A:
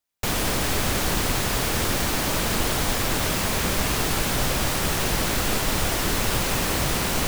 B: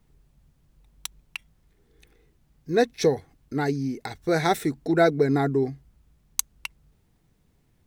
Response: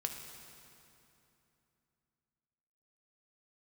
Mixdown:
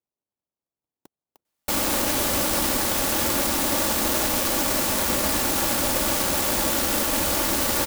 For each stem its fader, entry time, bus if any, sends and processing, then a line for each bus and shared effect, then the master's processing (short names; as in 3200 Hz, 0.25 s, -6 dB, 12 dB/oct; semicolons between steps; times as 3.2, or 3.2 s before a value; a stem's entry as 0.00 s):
+1.5 dB, 1.45 s, no send, low shelf 220 Hz -7 dB; comb 3.5 ms, depth 72%
-19.0 dB, 0.00 s, no send, inverse Chebyshev high-pass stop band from 730 Hz; differentiator; sample-and-hold 24×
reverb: off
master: HPF 78 Hz 6 dB/oct; clock jitter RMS 0.13 ms